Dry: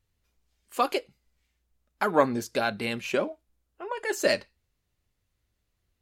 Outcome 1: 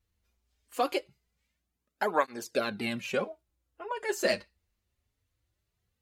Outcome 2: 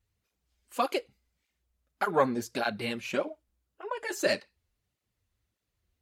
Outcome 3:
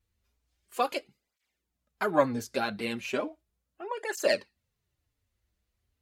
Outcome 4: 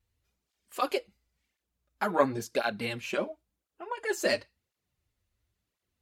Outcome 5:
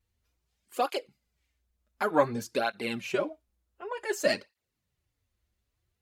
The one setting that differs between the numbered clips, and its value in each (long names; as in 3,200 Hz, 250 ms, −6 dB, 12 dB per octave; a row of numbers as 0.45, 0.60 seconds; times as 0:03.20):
through-zero flanger with one copy inverted, nulls at: 0.22, 1.7, 0.36, 0.95, 0.55 Hertz